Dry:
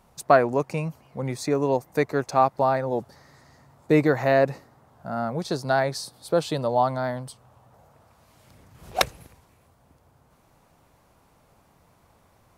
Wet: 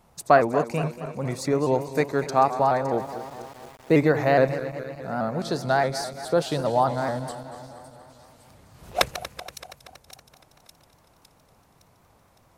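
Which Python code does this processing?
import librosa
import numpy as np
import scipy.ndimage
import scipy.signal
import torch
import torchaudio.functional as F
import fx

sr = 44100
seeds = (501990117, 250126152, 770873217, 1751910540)

y = fx.reverse_delay_fb(x, sr, ms=118, feedback_pct=77, wet_db=-13.0)
y = fx.echo_wet_highpass(y, sr, ms=560, feedback_pct=55, hz=5300.0, wet_db=-12.0)
y = fx.sample_gate(y, sr, floor_db=-44.5, at=(2.98, 4.03))
y = fx.vibrato_shape(y, sr, shape='saw_up', rate_hz=4.8, depth_cents=100.0)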